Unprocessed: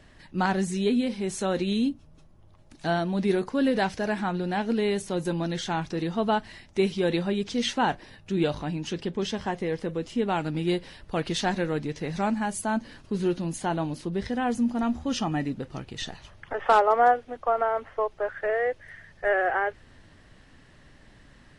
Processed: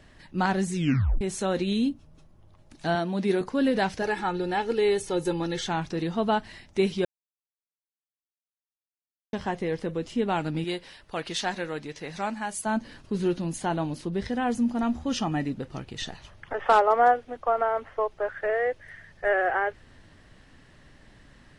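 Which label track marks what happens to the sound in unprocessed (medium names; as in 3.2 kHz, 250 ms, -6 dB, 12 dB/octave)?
0.750000	0.750000	tape stop 0.46 s
2.950000	3.410000	high-pass 160 Hz
4.020000	5.670000	comb 2.3 ms
7.050000	9.330000	mute
10.640000	12.660000	bass shelf 390 Hz -11 dB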